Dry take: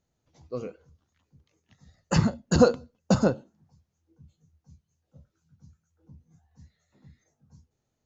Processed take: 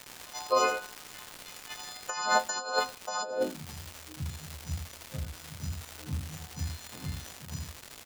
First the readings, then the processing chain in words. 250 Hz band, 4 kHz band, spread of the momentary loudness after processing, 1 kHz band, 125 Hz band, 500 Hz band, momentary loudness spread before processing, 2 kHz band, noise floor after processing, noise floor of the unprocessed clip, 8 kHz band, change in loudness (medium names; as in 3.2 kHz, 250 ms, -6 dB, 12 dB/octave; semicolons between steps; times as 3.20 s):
-15.0 dB, +5.0 dB, 16 LU, +6.0 dB, -7.0 dB, -5.0 dB, 18 LU, +6.5 dB, -49 dBFS, -79 dBFS, no reading, -8.5 dB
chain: partials quantised in pitch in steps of 3 st; high-pass sweep 860 Hz -> 61 Hz, 3.21–3.75 s; crackle 340 per s -46 dBFS; on a send: delay 81 ms -6.5 dB; on the sum: compressor with a negative ratio -36 dBFS, ratio -1; trim +6 dB